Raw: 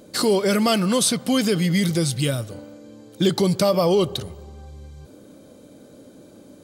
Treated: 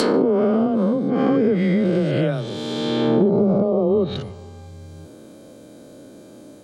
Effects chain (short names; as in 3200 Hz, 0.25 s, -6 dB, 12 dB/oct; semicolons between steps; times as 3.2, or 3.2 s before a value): spectral swells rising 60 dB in 2.60 s; frequency shift +16 Hz; treble ducked by the level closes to 430 Hz, closed at -10.5 dBFS